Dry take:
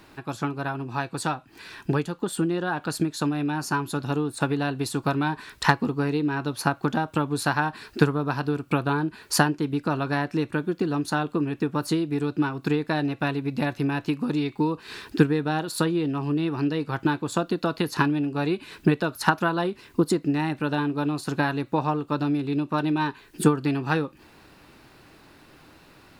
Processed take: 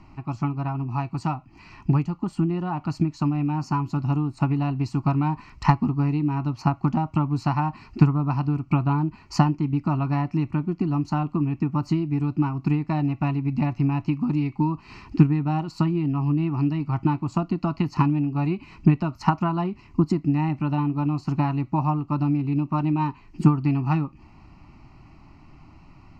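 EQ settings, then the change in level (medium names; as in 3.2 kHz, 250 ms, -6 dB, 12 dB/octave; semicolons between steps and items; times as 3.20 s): distance through air 52 m; tilt EQ -2.5 dB/octave; static phaser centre 2.4 kHz, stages 8; +1.0 dB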